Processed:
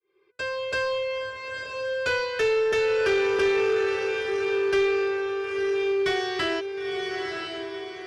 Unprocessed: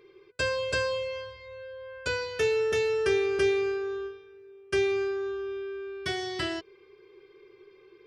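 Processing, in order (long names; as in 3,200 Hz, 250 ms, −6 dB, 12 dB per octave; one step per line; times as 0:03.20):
fade in at the beginning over 1.25 s
feedback delay with all-pass diffusion 966 ms, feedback 41%, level −5.5 dB
mid-hump overdrive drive 16 dB, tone 2,300 Hz, clips at −14 dBFS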